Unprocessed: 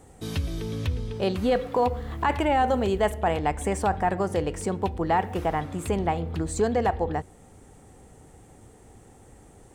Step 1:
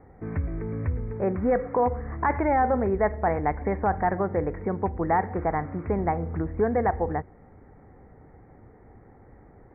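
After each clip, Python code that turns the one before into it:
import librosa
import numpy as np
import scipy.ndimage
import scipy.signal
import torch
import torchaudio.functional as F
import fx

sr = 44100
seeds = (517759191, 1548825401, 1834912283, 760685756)

y = scipy.signal.sosfilt(scipy.signal.butter(16, 2200.0, 'lowpass', fs=sr, output='sos'), x)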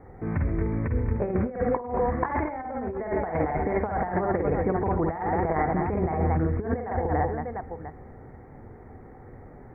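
y = fx.echo_multitap(x, sr, ms=(49, 57, 131, 227, 701), db=(-3.0, -8.5, -13.0, -7.5, -14.0))
y = fx.over_compress(y, sr, threshold_db=-25.0, ratio=-0.5)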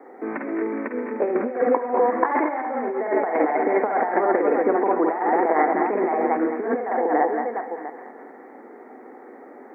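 y = scipy.signal.sosfilt(scipy.signal.butter(8, 250.0, 'highpass', fs=sr, output='sos'), x)
y = fx.echo_thinned(y, sr, ms=208, feedback_pct=67, hz=760.0, wet_db=-9)
y = y * 10.0 ** (6.5 / 20.0)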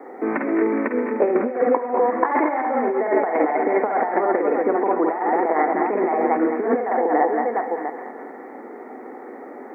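y = fx.notch(x, sr, hz=1600.0, q=23.0)
y = fx.rider(y, sr, range_db=4, speed_s=0.5)
y = y * 10.0 ** (2.0 / 20.0)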